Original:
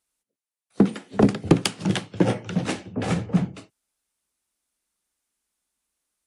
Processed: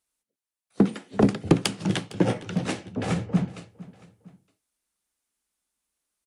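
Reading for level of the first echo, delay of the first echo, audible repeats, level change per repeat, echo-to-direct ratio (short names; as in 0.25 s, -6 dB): -19.5 dB, 0.457 s, 2, -7.0 dB, -18.5 dB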